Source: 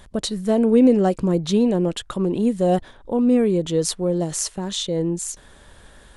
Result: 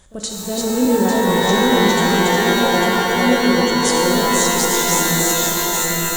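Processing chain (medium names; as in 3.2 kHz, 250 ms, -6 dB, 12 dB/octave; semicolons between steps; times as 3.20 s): backward echo that repeats 425 ms, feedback 57%, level -0.5 dB; peaking EQ 6.9 kHz +12 dB 0.74 oct; on a send: reverse echo 36 ms -18 dB; on the sum: pitch-shifted reverb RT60 3.8 s, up +12 st, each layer -2 dB, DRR -1 dB; trim -5.5 dB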